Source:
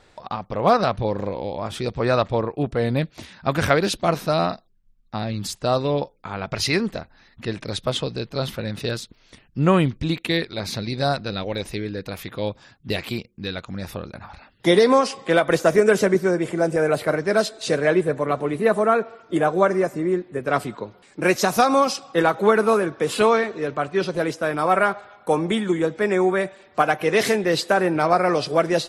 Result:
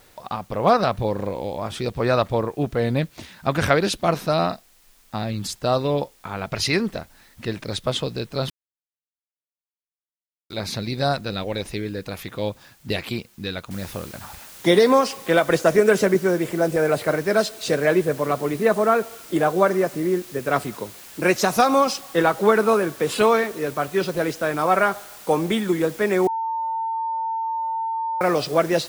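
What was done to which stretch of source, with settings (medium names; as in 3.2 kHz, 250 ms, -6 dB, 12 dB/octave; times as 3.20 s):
8.50–10.50 s: mute
13.71 s: noise floor step -57 dB -43 dB
26.27–28.21 s: bleep 901 Hz -22.5 dBFS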